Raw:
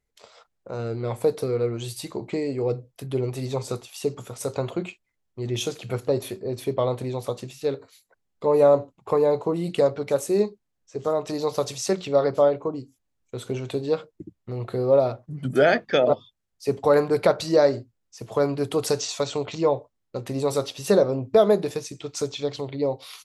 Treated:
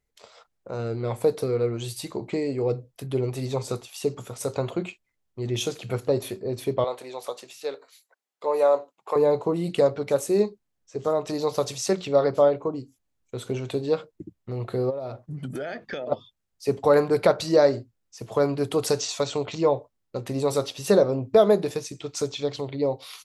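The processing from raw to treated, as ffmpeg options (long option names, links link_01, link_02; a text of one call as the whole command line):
ffmpeg -i in.wav -filter_complex "[0:a]asettb=1/sr,asplit=3[link_01][link_02][link_03];[link_01]atrim=end=6.844[link_04];[link_02]atrim=start=6.84:end=9.16,asetpts=PTS-STARTPTS,afade=type=in:duration=0.004:curve=qsin,afade=type=out:start_time=2.316:duration=0.004:curve=qsin,highpass=580[link_05];[link_03]atrim=start=9.156[link_06];[link_04][link_05]acrossfade=duration=0.004:curve1=hsin:curve2=qsin[link_07];[link_07][link_06]acrossfade=duration=0.004:curve1=qsin:curve2=hsin,asplit=3[link_08][link_09][link_10];[link_08]afade=type=out:start_time=14.89:duration=0.02[link_11];[link_09]acompressor=threshold=-29dB:ratio=8:attack=3.2:release=140:knee=1:detection=peak,afade=type=in:start_time=14.89:duration=0.02,afade=type=out:start_time=16.11:duration=0.02[link_12];[link_10]afade=type=in:start_time=16.11:duration=0.02[link_13];[link_11][link_12][link_13]amix=inputs=3:normalize=0" out.wav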